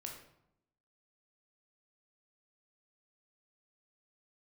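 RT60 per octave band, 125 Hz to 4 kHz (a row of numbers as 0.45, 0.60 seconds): 0.90, 1.0, 0.80, 0.75, 0.60, 0.50 seconds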